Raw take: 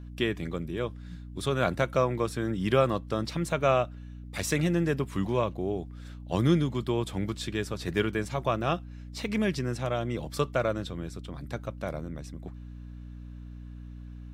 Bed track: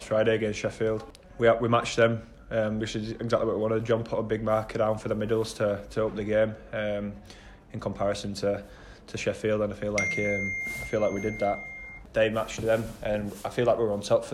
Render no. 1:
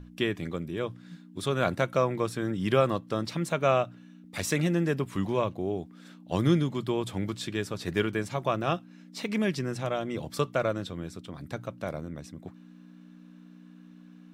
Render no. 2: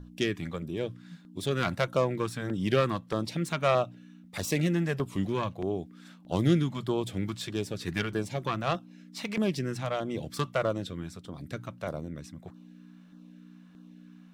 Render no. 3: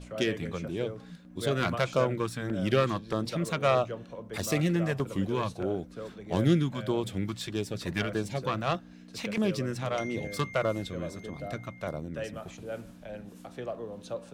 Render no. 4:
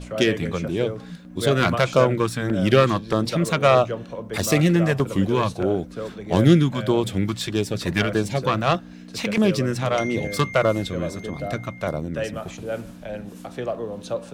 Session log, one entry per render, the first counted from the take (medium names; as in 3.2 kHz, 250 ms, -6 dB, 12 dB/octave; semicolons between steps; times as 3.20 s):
hum notches 60/120 Hz
self-modulated delay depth 0.11 ms; LFO notch saw down 1.6 Hz 230–2600 Hz
add bed track -13.5 dB
trim +9 dB; peak limiter -3 dBFS, peak gain reduction 1.5 dB